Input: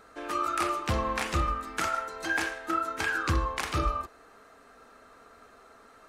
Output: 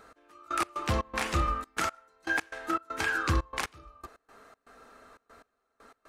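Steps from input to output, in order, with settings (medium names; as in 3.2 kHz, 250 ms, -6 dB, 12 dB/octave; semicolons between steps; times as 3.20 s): trance gate "x...x.xx.xxxx." 119 bpm -24 dB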